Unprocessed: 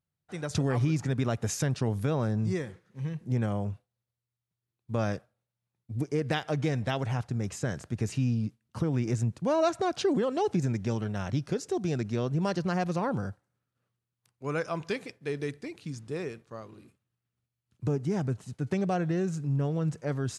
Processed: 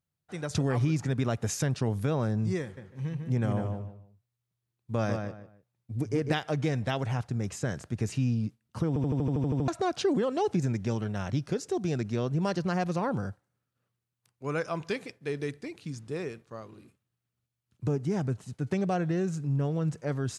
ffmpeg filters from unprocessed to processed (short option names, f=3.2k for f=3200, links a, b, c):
-filter_complex "[0:a]asettb=1/sr,asplit=3[a][b][c];[a]atrim=end=2.624[d];[b]atrim=start=2.62:end=6.33,asetpts=PTS-STARTPTS,afade=t=in:d=0.004:c=qsin,afade=t=out:st=3.706:d=0.004:c=qsin,asplit=2[e][f];[f]adelay=150,lowpass=f=2.7k:p=1,volume=-5dB,asplit=2[g][h];[h]adelay=150,lowpass=f=2.7k:p=1,volume=0.26,asplit=2[i][j];[j]adelay=150,lowpass=f=2.7k:p=1,volume=0.26[k];[e][g][i][k]amix=inputs=4:normalize=0,atrim=end_sample=163611[l];[c]atrim=start=6.326[m];[d][l]acrossfade=d=0.004:c1=hsin:c2=qsin[n];[n][m]acrossfade=d=0.004:c1=qsin:c2=hsin,asplit=11[o][p][q][r][s][t][u][v][w][x][y];[o]atrim=end=8.962[z];[p]atrim=start=8.878:end=8.962[aa];[q]atrim=start=8.878:end=8.962[ab];[r]atrim=start=8.878:end=8.962[ac];[s]atrim=start=8.878:end=8.962[ad];[t]atrim=start=8.878:end=8.962[ae];[u]atrim=start=8.878:end=8.962[af];[v]atrim=start=8.878:end=8.962[ag];[w]atrim=start=8.878:end=8.962[ah];[x]atrim=start=8.878:end=8.962[ai];[y]atrim=start=9.678[aj];[z][aa]acrossfade=d=0.004:c1=hsin:c2=hsin[ak];[ak][ab]acrossfade=d=0.004:c1=hsin:c2=hsin[al];[al][ac]acrossfade=d=0.004:c1=hsin:c2=hsin[am];[am][ad]acrossfade=d=0.004:c1=hsin:c2=hsin[an];[an][ae]acrossfade=d=0.004:c1=hsin:c2=hsin[ao];[ao][af]acrossfade=d=0.004:c1=hsin:c2=hsin[ap];[ap][ag]acrossfade=d=0.004:c1=hsin:c2=hsin[aq];[aq][ah]acrossfade=d=0.004:c1=hsin:c2=hsin[ar];[ar][ai]acrossfade=d=0.004:c1=hsin:c2=hsin[as];[as][aj]acrossfade=d=0.004:c1=hsin:c2=hsin"